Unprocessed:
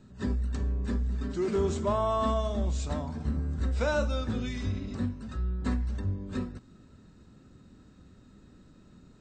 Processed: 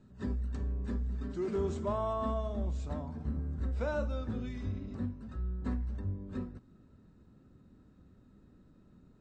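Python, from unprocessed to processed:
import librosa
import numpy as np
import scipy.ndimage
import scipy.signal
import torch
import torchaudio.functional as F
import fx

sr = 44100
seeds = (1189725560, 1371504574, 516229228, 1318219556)

y = fx.high_shelf(x, sr, hz=2200.0, db=fx.steps((0.0, -7.0), (2.12, -12.0)))
y = F.gain(torch.from_numpy(y), -5.0).numpy()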